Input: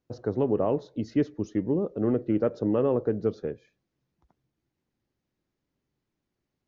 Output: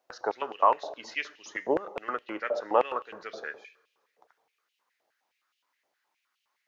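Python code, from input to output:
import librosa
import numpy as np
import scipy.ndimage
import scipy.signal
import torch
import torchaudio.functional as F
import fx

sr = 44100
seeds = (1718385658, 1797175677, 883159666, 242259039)

y = fx.rev_double_slope(x, sr, seeds[0], early_s=0.9, late_s=3.4, knee_db=-25, drr_db=15.5)
y = fx.filter_held_highpass(y, sr, hz=9.6, low_hz=680.0, high_hz=2900.0)
y = F.gain(torch.from_numpy(y), 6.5).numpy()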